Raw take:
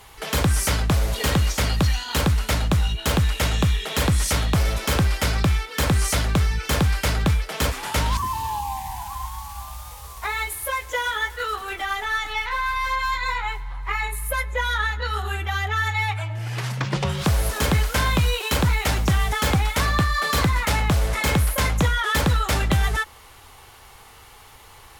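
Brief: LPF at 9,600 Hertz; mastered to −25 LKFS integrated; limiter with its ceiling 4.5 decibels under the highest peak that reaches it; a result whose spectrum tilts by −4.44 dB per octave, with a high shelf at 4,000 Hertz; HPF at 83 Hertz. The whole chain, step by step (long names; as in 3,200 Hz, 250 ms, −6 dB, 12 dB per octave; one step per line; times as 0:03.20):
high-pass filter 83 Hz
low-pass filter 9,600 Hz
high-shelf EQ 4,000 Hz +4 dB
level −0.5 dB
brickwall limiter −13.5 dBFS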